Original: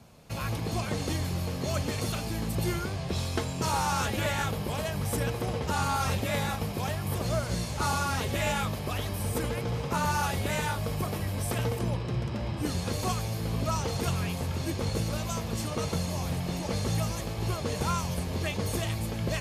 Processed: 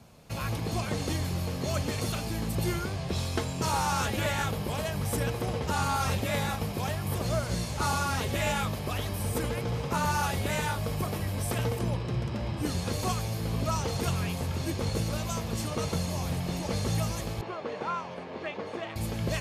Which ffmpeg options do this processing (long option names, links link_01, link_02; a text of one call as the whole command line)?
ffmpeg -i in.wav -filter_complex "[0:a]asettb=1/sr,asplit=3[link_01][link_02][link_03];[link_01]atrim=end=17.414[link_04];[link_02]atrim=start=17.41:end=18.96,asetpts=PTS-STARTPTS,afade=type=in:duration=0.004:curve=qsin,afade=type=out:start_time=1.546:duration=0.004:curve=qsin,highpass=330,lowpass=2200[link_05];[link_03]atrim=start=18.956[link_06];[link_04][link_05]acrossfade=duration=0.004:curve1=hsin:curve2=qsin[link_07];[link_07][link_06]acrossfade=duration=0.004:curve1=qsin:curve2=hsin" out.wav